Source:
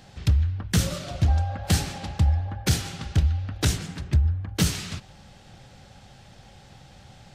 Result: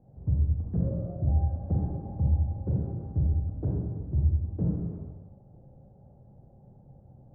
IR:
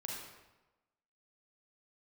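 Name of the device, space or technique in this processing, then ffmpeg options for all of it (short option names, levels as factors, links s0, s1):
next room: -filter_complex "[0:a]lowpass=f=630:w=0.5412,lowpass=f=630:w=1.3066[s0];[1:a]atrim=start_sample=2205[s1];[s0][s1]afir=irnorm=-1:irlink=0,volume=0.708"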